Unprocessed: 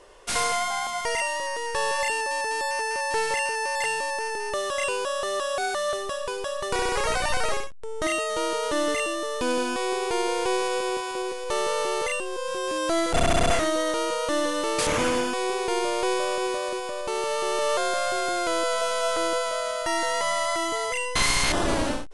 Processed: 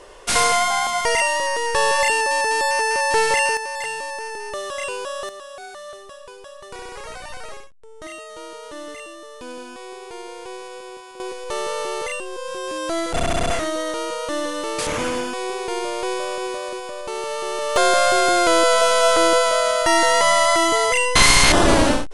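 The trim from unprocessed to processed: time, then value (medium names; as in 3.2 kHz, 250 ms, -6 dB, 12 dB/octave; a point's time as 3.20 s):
+7.5 dB
from 3.57 s -1 dB
from 5.29 s -10 dB
from 11.20 s 0 dB
from 17.76 s +9.5 dB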